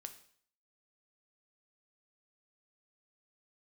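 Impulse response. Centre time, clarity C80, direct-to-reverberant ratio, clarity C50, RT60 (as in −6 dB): 8 ms, 15.5 dB, 7.5 dB, 12.0 dB, 0.55 s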